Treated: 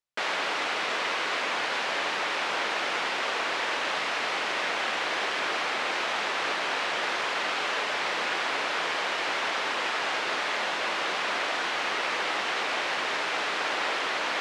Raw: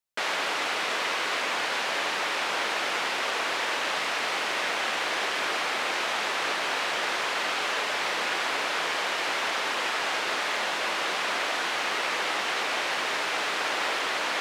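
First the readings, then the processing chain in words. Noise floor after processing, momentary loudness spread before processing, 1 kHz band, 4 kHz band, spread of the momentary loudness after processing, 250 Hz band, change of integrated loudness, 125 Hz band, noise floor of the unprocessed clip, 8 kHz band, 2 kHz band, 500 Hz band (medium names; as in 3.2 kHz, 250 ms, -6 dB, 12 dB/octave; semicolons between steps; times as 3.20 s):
-30 dBFS, 0 LU, -0.5 dB, -1.5 dB, 0 LU, 0.0 dB, -0.5 dB, no reading, -30 dBFS, -4.5 dB, -0.5 dB, 0.0 dB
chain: distance through air 54 m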